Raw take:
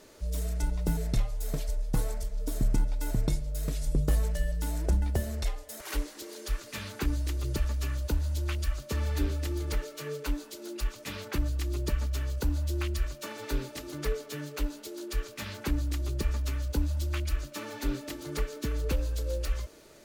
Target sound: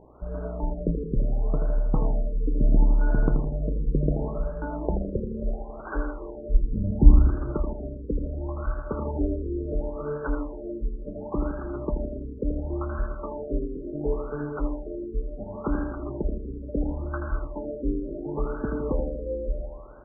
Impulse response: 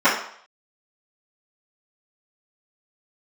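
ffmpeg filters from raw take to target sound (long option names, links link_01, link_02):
-filter_complex "[0:a]equalizer=frequency=75:width=1.1:gain=-14,aeval=exprs='val(0)+0.00126*(sin(2*PI*60*n/s)+sin(2*PI*2*60*n/s)/2+sin(2*PI*3*60*n/s)/3+sin(2*PI*4*60*n/s)/4+sin(2*PI*5*60*n/s)/5)':channel_layout=same,asplit=2[link_01][link_02];[link_02]acompressor=threshold=-45dB:ratio=6,volume=-2dB[link_03];[link_01][link_03]amix=inputs=2:normalize=0,asplit=3[link_04][link_05][link_06];[link_04]afade=type=out:start_time=6.54:duration=0.02[link_07];[link_05]asubboost=boost=7:cutoff=190,afade=type=in:start_time=6.54:duration=0.02,afade=type=out:start_time=7.3:duration=0.02[link_08];[link_06]afade=type=in:start_time=7.3:duration=0.02[link_09];[link_07][link_08][link_09]amix=inputs=3:normalize=0,aeval=exprs='sgn(val(0))*max(abs(val(0))-0.00355,0)':channel_layout=same,aecho=1:1:81|162|243|324|405|486|567:0.447|0.259|0.15|0.0872|0.0505|0.0293|0.017,asplit=2[link_10][link_11];[1:a]atrim=start_sample=2205,adelay=107[link_12];[link_11][link_12]afir=irnorm=-1:irlink=0,volume=-31dB[link_13];[link_10][link_13]amix=inputs=2:normalize=0,afftfilt=real='re*lt(b*sr/1024,540*pow(1700/540,0.5+0.5*sin(2*PI*0.71*pts/sr)))':imag='im*lt(b*sr/1024,540*pow(1700/540,0.5+0.5*sin(2*PI*0.71*pts/sr)))':win_size=1024:overlap=0.75,volume=6.5dB"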